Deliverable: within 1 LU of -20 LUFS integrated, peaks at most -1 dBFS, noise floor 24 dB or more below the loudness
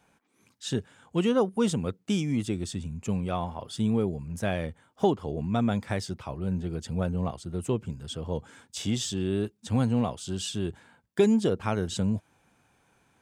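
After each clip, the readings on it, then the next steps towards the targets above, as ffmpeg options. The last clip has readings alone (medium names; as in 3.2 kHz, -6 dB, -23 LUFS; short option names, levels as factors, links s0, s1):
loudness -29.5 LUFS; peak level -11.0 dBFS; loudness target -20.0 LUFS
-> -af "volume=2.99"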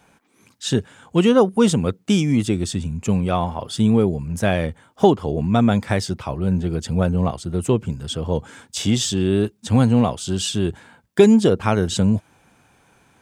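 loudness -20.0 LUFS; peak level -1.5 dBFS; noise floor -59 dBFS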